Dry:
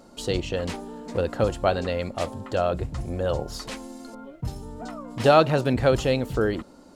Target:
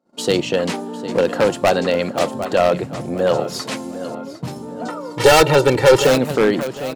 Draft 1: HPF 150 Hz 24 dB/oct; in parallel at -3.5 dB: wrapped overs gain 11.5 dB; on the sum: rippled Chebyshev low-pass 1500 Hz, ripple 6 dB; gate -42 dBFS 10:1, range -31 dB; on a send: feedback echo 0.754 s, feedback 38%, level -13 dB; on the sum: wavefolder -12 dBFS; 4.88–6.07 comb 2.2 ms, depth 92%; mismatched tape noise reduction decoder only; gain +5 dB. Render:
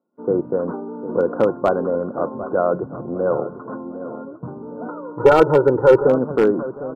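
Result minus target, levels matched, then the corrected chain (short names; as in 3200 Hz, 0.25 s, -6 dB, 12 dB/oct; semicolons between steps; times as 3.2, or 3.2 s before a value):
2000 Hz band -6.5 dB
HPF 150 Hz 24 dB/oct; in parallel at -3.5 dB: wrapped overs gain 11.5 dB; on the sum: gate -42 dBFS 10:1, range -31 dB; on a send: feedback echo 0.754 s, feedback 38%, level -13 dB; on the sum: wavefolder -12 dBFS; 4.88–6.07 comb 2.2 ms, depth 92%; mismatched tape noise reduction decoder only; gain +5 dB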